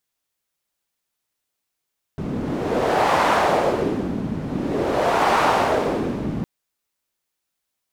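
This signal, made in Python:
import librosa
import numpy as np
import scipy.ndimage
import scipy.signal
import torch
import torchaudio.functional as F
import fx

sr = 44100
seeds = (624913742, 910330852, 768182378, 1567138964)

y = fx.wind(sr, seeds[0], length_s=4.26, low_hz=200.0, high_hz=890.0, q=1.6, gusts=2, swing_db=9)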